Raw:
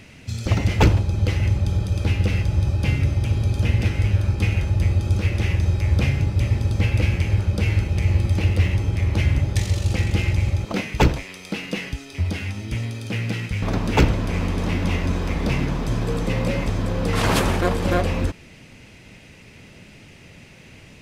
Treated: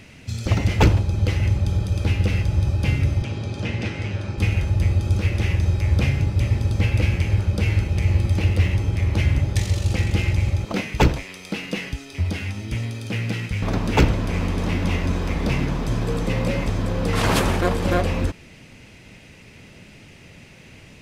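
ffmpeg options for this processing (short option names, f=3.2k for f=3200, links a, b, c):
-filter_complex "[0:a]asettb=1/sr,asplit=3[a][b][c];[a]atrim=end=3.224[d];[b]atrim=start=3.22:end=4.38,asetpts=PTS-STARTPTS,afade=t=in:d=0.004:c=qsin,afade=t=out:st=1.156:d=0.004:c=qsin,highpass=150,lowpass=6.5k[e];[c]atrim=start=4.376[f];[d][e]acrossfade=d=0.004:c1=hsin:c2=qsin[g];[g][f]acrossfade=d=0.004:c1=qsin:c2=hsin"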